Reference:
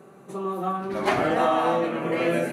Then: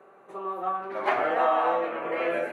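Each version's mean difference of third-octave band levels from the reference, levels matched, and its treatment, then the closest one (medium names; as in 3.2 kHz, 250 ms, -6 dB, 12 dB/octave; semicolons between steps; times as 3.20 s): 6.5 dB: three-band isolator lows -21 dB, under 420 Hz, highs -17 dB, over 2.7 kHz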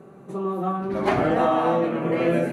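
3.5 dB: tilt EQ -2 dB/octave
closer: second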